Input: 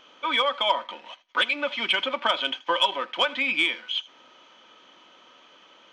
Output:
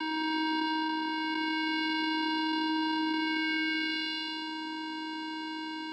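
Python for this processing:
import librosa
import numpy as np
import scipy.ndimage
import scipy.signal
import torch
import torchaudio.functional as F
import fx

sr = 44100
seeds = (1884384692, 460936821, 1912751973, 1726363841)

y = fx.spec_blur(x, sr, span_ms=532.0)
y = fx.low_shelf(y, sr, hz=320.0, db=-7.0)
y = fx.vocoder(y, sr, bands=8, carrier='square', carrier_hz=315.0)
y = fx.notch_comb(y, sr, f0_hz=850.0)
y = fx.env_flatten(y, sr, amount_pct=70)
y = y * librosa.db_to_amplitude(2.0)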